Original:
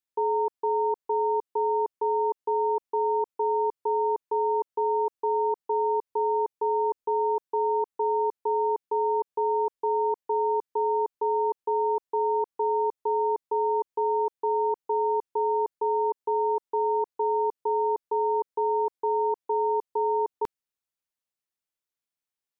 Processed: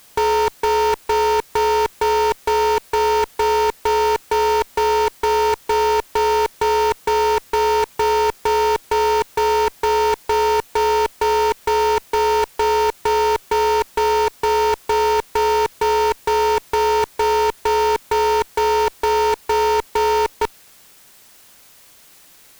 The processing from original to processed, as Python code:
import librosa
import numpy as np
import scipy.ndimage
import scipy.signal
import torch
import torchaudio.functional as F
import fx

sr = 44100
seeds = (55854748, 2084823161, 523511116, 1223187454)

p1 = fx.over_compress(x, sr, threshold_db=-38.0, ratio=-1.0)
p2 = fx.quant_companded(p1, sr, bits=2)
p3 = p1 + (p2 * librosa.db_to_amplitude(-10.0))
p4 = fx.fuzz(p3, sr, gain_db=41.0, gate_db=-48.0)
y = fx.quant_dither(p4, sr, seeds[0], bits=8, dither='triangular')